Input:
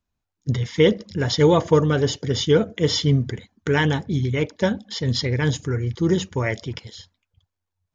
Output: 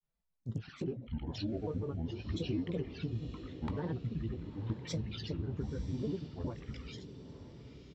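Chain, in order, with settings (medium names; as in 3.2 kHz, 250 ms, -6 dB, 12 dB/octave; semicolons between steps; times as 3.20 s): rotating-head pitch shifter -4.5 st; treble shelf 2.7 kHz -5 dB; low-pass that closes with the level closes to 1.1 kHz, closed at -17 dBFS; compression 10:1, threshold -29 dBFS, peak gain reduction 18 dB; touch-sensitive flanger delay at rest 4.6 ms, full sweep at -29 dBFS; feedback comb 170 Hz, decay 0.46 s, harmonics all, mix 50%; granulator, pitch spread up and down by 7 st; doubling 18 ms -12.5 dB; echo that smears into a reverb 966 ms, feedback 56%, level -12 dB; trim +2 dB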